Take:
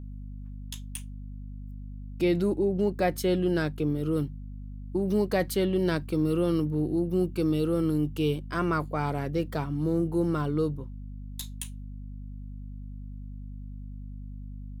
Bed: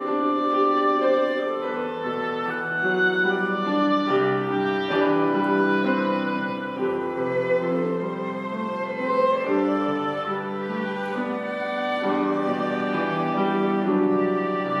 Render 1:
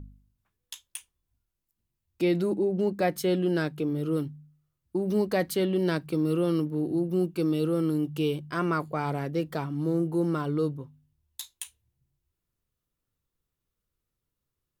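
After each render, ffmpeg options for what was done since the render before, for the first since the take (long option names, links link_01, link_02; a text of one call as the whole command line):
ffmpeg -i in.wav -af "bandreject=frequency=50:width_type=h:width=4,bandreject=frequency=100:width_type=h:width=4,bandreject=frequency=150:width_type=h:width=4,bandreject=frequency=200:width_type=h:width=4,bandreject=frequency=250:width_type=h:width=4" out.wav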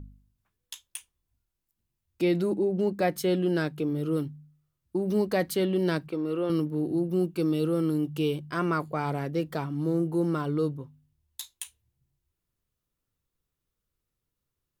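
ffmpeg -i in.wav -filter_complex "[0:a]asettb=1/sr,asplit=3[link_01][link_02][link_03];[link_01]atrim=end=6.084[link_04];[link_02]atrim=start=6.08:end=6.5,asetpts=PTS-STARTPTS,afade=type=in:duration=0.004:curve=qsin,afade=type=out:start_time=0.416:duration=0.004:curve=qsin,bass=frequency=250:gain=-12,treble=frequency=4000:gain=-13[link_05];[link_03]atrim=start=6.496[link_06];[link_04][link_05]acrossfade=duration=0.004:curve1=hsin:curve2=qsin[link_07];[link_07][link_06]acrossfade=duration=0.004:curve1=qsin:curve2=hsin" out.wav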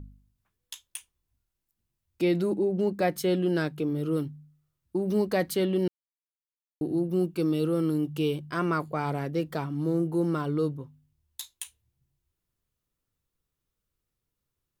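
ffmpeg -i in.wav -filter_complex "[0:a]asplit=3[link_01][link_02][link_03];[link_01]atrim=end=5.88,asetpts=PTS-STARTPTS,afade=type=out:start_time=5.876:duration=0.004:curve=hsin[link_04];[link_02]atrim=start=5.88:end=6.81,asetpts=PTS-STARTPTS,volume=0[link_05];[link_03]atrim=start=6.81,asetpts=PTS-STARTPTS,afade=type=in:duration=0.004:curve=hsin[link_06];[link_04][link_05][link_06]concat=n=3:v=0:a=1" out.wav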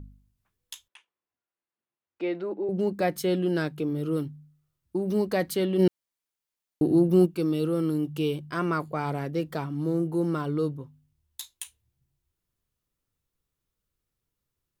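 ffmpeg -i in.wav -filter_complex "[0:a]asettb=1/sr,asplit=3[link_01][link_02][link_03];[link_01]atrim=end=0.884[link_04];[link_02]atrim=start=0.88:end=2.69,asetpts=PTS-STARTPTS,afade=type=in:duration=0.004:curve=qsin,afade=type=out:start_time=1.806:duration=0.004:curve=qsin,highpass=420,lowpass=2200[link_05];[link_03]atrim=start=2.686[link_06];[link_04][link_05]acrossfade=duration=0.004:curve1=hsin:curve2=qsin[link_07];[link_07][link_06]acrossfade=duration=0.004:curve1=qsin:curve2=hsin,asplit=3[link_08][link_09][link_10];[link_08]afade=type=out:start_time=5.78:duration=0.02[link_11];[link_09]acontrast=80,afade=type=in:start_time=5.78:duration=0.02,afade=type=out:start_time=7.25:duration=0.02[link_12];[link_10]afade=type=in:start_time=7.25:duration=0.02[link_13];[link_11][link_12][link_13]amix=inputs=3:normalize=0" out.wav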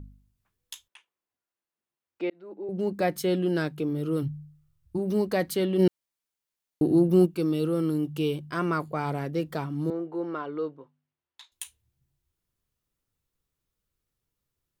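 ffmpeg -i in.wav -filter_complex "[0:a]asplit=3[link_01][link_02][link_03];[link_01]afade=type=out:start_time=4.22:duration=0.02[link_04];[link_02]asubboost=boost=7.5:cutoff=120,afade=type=in:start_time=4.22:duration=0.02,afade=type=out:start_time=4.97:duration=0.02[link_05];[link_03]afade=type=in:start_time=4.97:duration=0.02[link_06];[link_04][link_05][link_06]amix=inputs=3:normalize=0,asettb=1/sr,asplit=3[link_07][link_08][link_09];[link_07]atrim=end=9.904[link_10];[link_08]atrim=start=9.9:end=11.52,asetpts=PTS-STARTPTS,afade=type=in:duration=0.004:curve=qsin,afade=type=out:start_time=1.616:duration=0.004:curve=qsin,highpass=410,lowpass=2600[link_11];[link_09]atrim=start=11.516[link_12];[link_10][link_11]acrossfade=duration=0.004:curve1=hsin:curve2=qsin[link_13];[link_13][link_12]acrossfade=duration=0.004:curve1=qsin:curve2=hsin,asplit=2[link_14][link_15];[link_14]atrim=end=2.3,asetpts=PTS-STARTPTS,afade=type=out:start_time=2.296:duration=0.004:curve=hsin[link_16];[link_15]atrim=start=2.3,asetpts=PTS-STARTPTS,afade=type=in:duration=0.67[link_17];[link_16][link_17]concat=n=2:v=0:a=1" out.wav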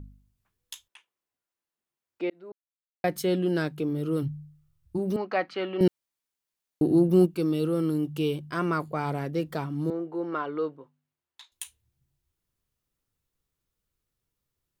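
ffmpeg -i in.wav -filter_complex "[0:a]asettb=1/sr,asplit=3[link_01][link_02][link_03];[link_01]atrim=end=5.164[link_04];[link_02]atrim=start=5.16:end=5.81,asetpts=PTS-STARTPTS,afade=type=in:duration=0.004:curve=qsin,afade=type=out:start_time=0.646:duration=0.004:curve=qsin,highpass=380,equalizer=frequency=450:width_type=q:width=4:gain=-6,equalizer=frequency=780:width_type=q:width=4:gain=5,equalizer=frequency=1300:width_type=q:width=4:gain=9,equalizer=frequency=2500:width_type=q:width=4:gain=5,equalizer=frequency=3600:width_type=q:width=4:gain=-8,lowpass=frequency=4100:width=0.5412,lowpass=frequency=4100:width=1.3066[link_05];[link_03]atrim=start=5.806[link_06];[link_04][link_05]acrossfade=duration=0.004:curve1=hsin:curve2=qsin[link_07];[link_07][link_06]acrossfade=duration=0.004:curve1=qsin:curve2=hsin,asettb=1/sr,asplit=3[link_08][link_09][link_10];[link_08]atrim=end=10.324[link_11];[link_09]atrim=start=10.32:end=10.76,asetpts=PTS-STARTPTS,afade=type=in:duration=0.004:curve=qsin,afade=type=out:start_time=0.436:duration=0.004:curve=qsin,equalizer=frequency=1600:width=0.41:gain=4.5[link_12];[link_10]atrim=start=10.756[link_13];[link_11][link_12]acrossfade=duration=0.004:curve1=hsin:curve2=qsin[link_14];[link_14][link_13]acrossfade=duration=0.004:curve1=qsin:curve2=hsin,asplit=3[link_15][link_16][link_17];[link_15]atrim=end=2.52,asetpts=PTS-STARTPTS,afade=type=out:start_time=2.516:duration=0.004:curve=hsin[link_18];[link_16]atrim=start=2.52:end=3.04,asetpts=PTS-STARTPTS,volume=0[link_19];[link_17]atrim=start=3.04,asetpts=PTS-STARTPTS,afade=type=in:duration=0.004:curve=hsin[link_20];[link_18][link_19][link_20]concat=n=3:v=0:a=1" out.wav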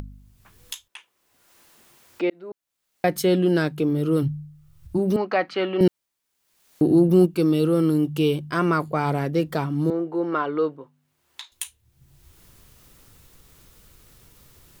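ffmpeg -i in.wav -filter_complex "[0:a]asplit=2[link_01][link_02];[link_02]alimiter=limit=-18dB:level=0:latency=1:release=96,volume=1dB[link_03];[link_01][link_03]amix=inputs=2:normalize=0,acompressor=mode=upward:threshold=-32dB:ratio=2.5" out.wav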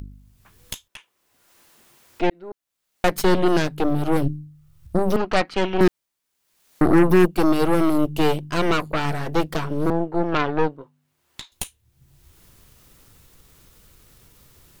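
ffmpeg -i in.wav -af "aeval=exprs='0.473*(cos(1*acos(clip(val(0)/0.473,-1,1)))-cos(1*PI/2))+0.0944*(cos(8*acos(clip(val(0)/0.473,-1,1)))-cos(8*PI/2))':channel_layout=same" out.wav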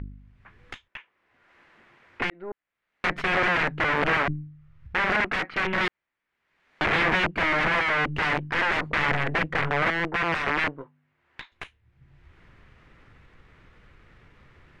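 ffmpeg -i in.wav -af "aeval=exprs='(mod(7.94*val(0)+1,2)-1)/7.94':channel_layout=same,lowpass=frequency=2000:width_type=q:width=2.2" out.wav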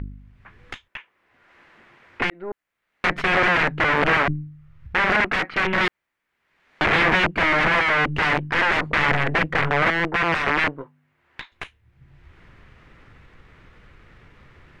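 ffmpeg -i in.wav -af "volume=4.5dB" out.wav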